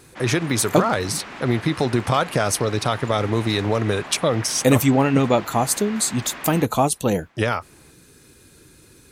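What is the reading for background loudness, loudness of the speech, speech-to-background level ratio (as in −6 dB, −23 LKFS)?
−36.0 LKFS, −21.0 LKFS, 15.0 dB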